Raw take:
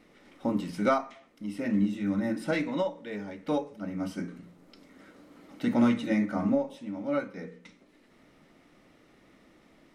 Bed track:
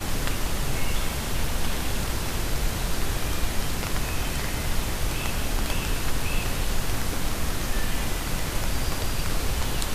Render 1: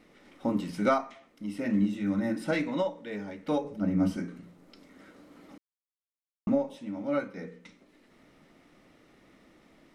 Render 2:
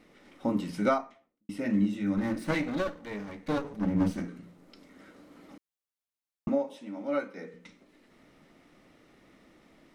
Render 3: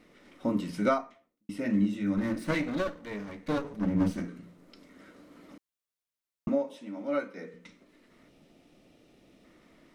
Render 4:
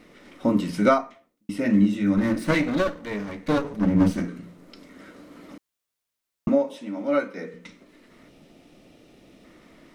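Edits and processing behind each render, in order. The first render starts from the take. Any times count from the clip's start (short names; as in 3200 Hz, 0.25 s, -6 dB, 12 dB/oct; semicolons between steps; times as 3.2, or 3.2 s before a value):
3.64–4.17 low shelf 460 Hz +10.5 dB; 5.58–6.47 mute
0.79–1.49 studio fade out; 2.17–4.28 minimum comb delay 0.47 ms; 6.48–7.54 HPF 260 Hz
8.28–9.45 spectral gain 890–2300 Hz -8 dB; notch 810 Hz, Q 12
gain +7.5 dB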